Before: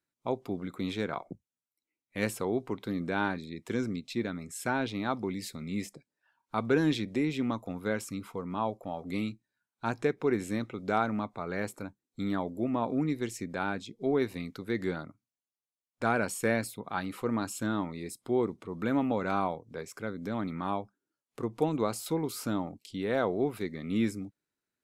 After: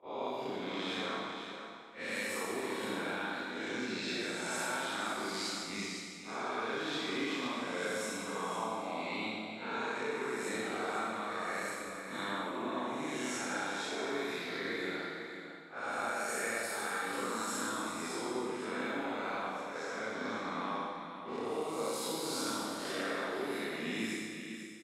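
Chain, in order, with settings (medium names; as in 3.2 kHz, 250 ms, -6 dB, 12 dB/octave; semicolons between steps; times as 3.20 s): reverse spectral sustain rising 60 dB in 1.28 s; frequency weighting A; gate -40 dBFS, range -21 dB; peaking EQ 740 Hz -4.5 dB 2.1 oct; level-controlled noise filter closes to 2.1 kHz, open at -31 dBFS; compression, threshold -38 dBFS, peak gain reduction 13 dB; delay 500 ms -9 dB; Schroeder reverb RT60 1.7 s, combs from 28 ms, DRR -4.5 dB; trim -1 dB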